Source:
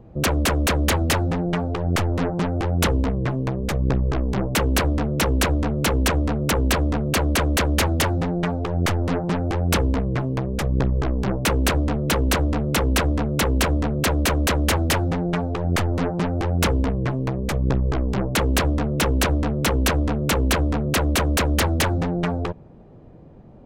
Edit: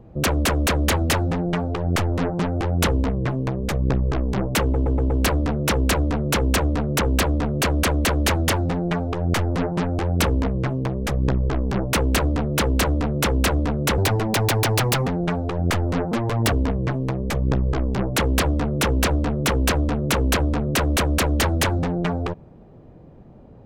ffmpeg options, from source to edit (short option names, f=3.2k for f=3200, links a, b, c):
-filter_complex "[0:a]asplit=9[a][b][c][d][e][f][g][h][i];[a]atrim=end=4.742[j];[b]atrim=start=4.618:end=4.742[k];[c]atrim=start=4.618:end=4.742[l];[d]atrim=start=4.618:end=4.742[m];[e]atrim=start=4.618:end=13.504[n];[f]atrim=start=13.5:end=15.13,asetpts=PTS-STARTPTS,asetrate=65709,aresample=44100[o];[g]atrim=start=15.126:end=16.174[p];[h]atrim=start=16.17:end=16.71,asetpts=PTS-STARTPTS,asetrate=58212,aresample=44100[q];[i]atrim=start=16.706[r];[j][k]acrossfade=d=0.004:c1=hsin:c2=hsin[s];[s][l]acrossfade=d=0.004:c1=hsin:c2=hsin[t];[t][m]acrossfade=d=0.004:c1=hsin:c2=hsin[u];[u][n]acrossfade=d=0.004:c1=hsin:c2=hsin[v];[v][o]acrossfade=d=0.004:c1=hsin:c2=hsin[w];[w][p]acrossfade=d=0.004:c1=hsin:c2=hsin[x];[x][q]acrossfade=d=0.004:c1=hsin:c2=hsin[y];[y][r]acrossfade=d=0.004:c1=hsin:c2=hsin"